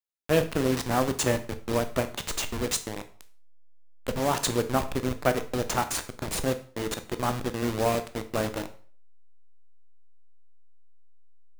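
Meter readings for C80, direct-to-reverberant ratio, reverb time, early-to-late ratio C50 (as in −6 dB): 18.5 dB, 9.0 dB, 0.45 s, 14.0 dB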